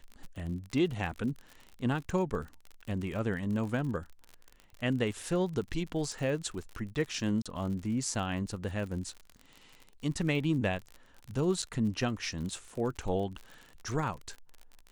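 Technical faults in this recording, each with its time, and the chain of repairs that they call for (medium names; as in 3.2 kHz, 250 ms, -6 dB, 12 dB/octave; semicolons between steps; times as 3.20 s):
crackle 49 per s -38 dBFS
7.42–7.46 s: dropout 36 ms
11.62–11.63 s: dropout 6.3 ms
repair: de-click; interpolate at 7.42 s, 36 ms; interpolate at 11.62 s, 6.3 ms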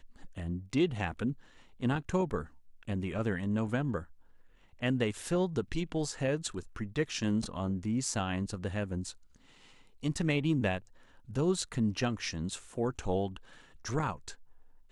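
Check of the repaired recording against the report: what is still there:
nothing left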